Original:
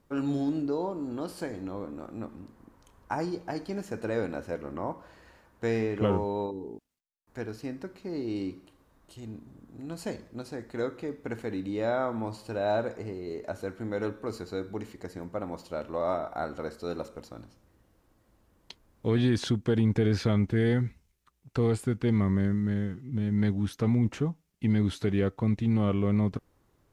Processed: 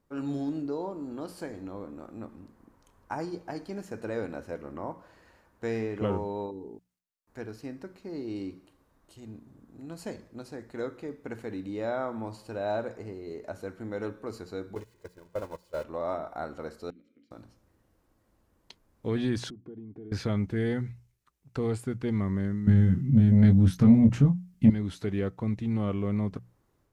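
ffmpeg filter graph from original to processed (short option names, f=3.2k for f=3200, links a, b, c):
-filter_complex "[0:a]asettb=1/sr,asplit=3[a][b][c];[a]atrim=end=14.754[d];[b]atrim=start=14.75:end=15.84,asetpts=PTS-STARTPTS,afade=t=in:d=0.004:c=qsin,afade=t=out:st=1.086:d=0.004:c=qsin,aeval=exprs='val(0)+0.5*0.0112*sgn(val(0))':c=same,agate=range=-21dB:threshold=-34dB:ratio=16:release=100:detection=peak,aecho=1:1:2:0.63,atrim=end_sample=48069[e];[c]atrim=start=15.836[f];[d][e]acrossfade=d=0.004:c1=hsin:c2=qsin[g];[g][f]acrossfade=d=0.004:c1=qsin:c2=hsin,asettb=1/sr,asplit=3[h][i][j];[h]atrim=end=16.904[k];[i]atrim=start=16.9:end=17.31,asetpts=PTS-STARTPTS,afade=t=in:d=0.004:c=qsin,afade=t=out:st=0.406:d=0.004:c=qsin,acompressor=threshold=-38dB:ratio=10:attack=3.2:release=140:knee=1:detection=peak,asplit=3[l][m][n];[l]bandpass=f=270:t=q:w=8,volume=0dB[o];[m]bandpass=f=2.29k:t=q:w=8,volume=-6dB[p];[n]bandpass=f=3.01k:t=q:w=8,volume=-9dB[q];[o][p][q]amix=inputs=3:normalize=0[r];[j]atrim=start=17.306[s];[k][r]acrossfade=d=0.004:c1=hsin:c2=qsin[t];[t][s]acrossfade=d=0.004:c1=qsin:c2=hsin,asettb=1/sr,asplit=3[u][v][w];[u]atrim=end=19.504[x];[v]atrim=start=19.5:end=20.12,asetpts=PTS-STARTPTS,afade=t=in:d=0.004:c=qsin,afade=t=out:st=0.616:d=0.004:c=qsin,aecho=1:1:2.8:0.52,atrim=end_sample=27342,acompressor=threshold=-37dB:ratio=4:attack=3.2:release=140:knee=1:detection=peak,bandpass=f=250:t=q:w=1.1[y];[w]atrim=start=20.116[z];[x][y]acrossfade=d=0.004:c1=hsin:c2=qsin[aa];[aa][z]acrossfade=d=0.004:c1=qsin:c2=hsin,asettb=1/sr,asplit=3[ab][ac][ad];[ab]atrim=end=22.674[ae];[ac]atrim=start=22.67:end=24.7,asetpts=PTS-STARTPTS,afade=t=in:d=0.004:c=qsin,afade=t=out:st=2.026:d=0.004:c=qsin,lowshelf=f=290:t=q:w=1.5:g=9,acontrast=52,asplit=2[af][ag];[ag]adelay=22,volume=-5.5dB[ah];[af][ah]amix=inputs=2:normalize=0,atrim=end_sample=89523[ai];[ad]atrim=start=24.696[aj];[ae][ai]acrossfade=d=0.004:c1=hsin:c2=qsin[ak];[ak][aj]acrossfade=d=0.004:c1=qsin:c2=hsin,dynaudnorm=f=110:g=3:m=4dB,equalizer=f=3.3k:t=o:w=0.77:g=-2,bandreject=f=60:t=h:w=6,bandreject=f=120:t=h:w=6,bandreject=f=180:t=h:w=6,volume=-7dB"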